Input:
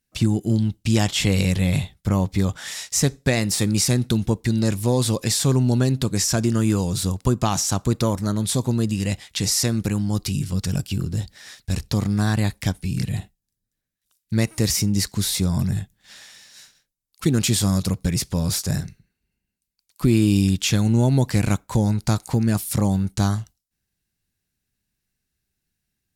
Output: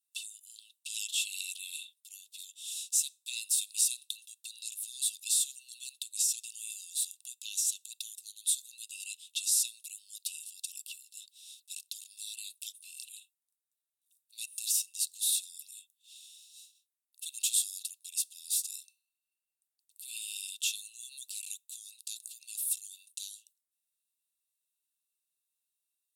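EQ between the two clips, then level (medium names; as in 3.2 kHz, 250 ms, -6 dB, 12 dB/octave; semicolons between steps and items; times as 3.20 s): rippled Chebyshev high-pass 2.6 kHz, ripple 9 dB; treble shelf 10 kHz +10.5 dB; -5.0 dB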